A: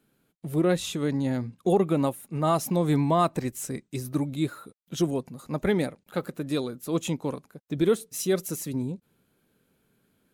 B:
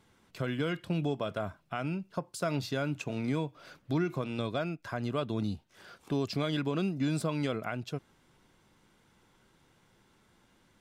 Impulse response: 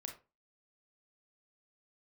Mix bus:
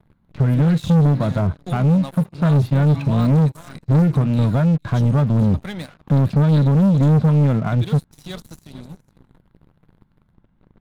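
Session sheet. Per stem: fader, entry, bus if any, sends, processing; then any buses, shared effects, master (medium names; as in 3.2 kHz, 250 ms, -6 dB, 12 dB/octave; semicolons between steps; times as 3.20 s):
-14.5 dB, 0.00 s, no send, echo send -14.5 dB, de-esser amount 80%; bass shelf 230 Hz -5 dB
+0.5 dB, 0.00 s, no send, no echo send, low-pass 1.8 kHz 12 dB/octave; tilt EQ -3.5 dB/octave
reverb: none
echo: delay 455 ms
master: fifteen-band graphic EQ 160 Hz +7 dB, 400 Hz -12 dB, 4 kHz +9 dB; waveshaping leveller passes 3; vibrato 1.9 Hz 31 cents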